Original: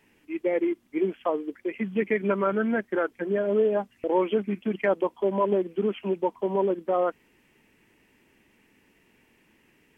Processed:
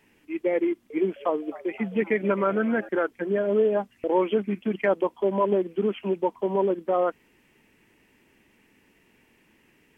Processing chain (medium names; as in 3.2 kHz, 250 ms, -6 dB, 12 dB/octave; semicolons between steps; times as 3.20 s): 0.64–2.89 s: frequency-shifting echo 260 ms, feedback 61%, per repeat +110 Hz, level -19 dB; trim +1 dB